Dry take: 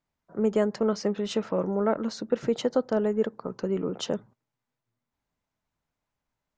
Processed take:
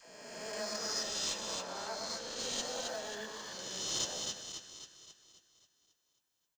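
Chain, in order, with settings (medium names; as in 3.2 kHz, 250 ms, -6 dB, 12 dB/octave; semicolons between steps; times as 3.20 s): reverse spectral sustain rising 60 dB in 1.81 s; differentiator; comb 1.2 ms, depth 49%; phase dispersion lows, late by 78 ms, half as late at 440 Hz; on a send: two-band feedback delay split 1.5 kHz, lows 114 ms, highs 268 ms, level -4 dB; on the sum: flange 1.4 Hz, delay 5.6 ms, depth 2.2 ms, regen -42%; in parallel at -11.5 dB: sample-rate reducer 3.2 kHz, jitter 0%; 1.62–2.40 s: on the sum: treble shelf 4.7 kHz -6 dB; trim +4 dB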